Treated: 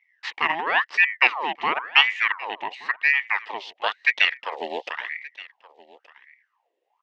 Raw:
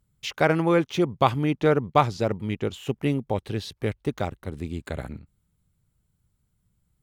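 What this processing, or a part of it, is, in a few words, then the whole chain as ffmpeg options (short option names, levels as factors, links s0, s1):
voice changer toy: -filter_complex "[0:a]aeval=exprs='val(0)*sin(2*PI*1300*n/s+1300*0.65/0.96*sin(2*PI*0.96*n/s))':c=same,highpass=540,equalizer=f=600:t=q:w=4:g=-7,equalizer=f=940:t=q:w=4:g=3,equalizer=f=1400:t=q:w=4:g=-8,equalizer=f=1900:t=q:w=4:g=8,equalizer=f=2800:t=q:w=4:g=8,equalizer=f=4400:t=q:w=4:g=-4,lowpass=f=5000:w=0.5412,lowpass=f=5000:w=1.3066,asettb=1/sr,asplit=3[s0][s1][s2];[s0]atrim=end=3.754[s3];[s1]atrim=start=3.75:end=4.9,asetpts=PTS-STARTPTS,afade=t=in:d=0.004:c=qsin,afade=t=out:st=1.146:d=0.004:c=qsin,equalizer=f=250:t=o:w=1:g=6,equalizer=f=500:t=o:w=1:g=12,equalizer=f=4000:t=o:w=1:g=10,equalizer=f=8000:t=o:w=1:g=7[s4];[s2]atrim=start=4.896[s5];[s3][s4]acrossfade=d=0.004:c1=hsin:c2=qsin[s6];[s6][s5]acrossfade=d=0.004:c1=qsin:c2=hsin,aecho=1:1:1174:0.0944,volume=1.19"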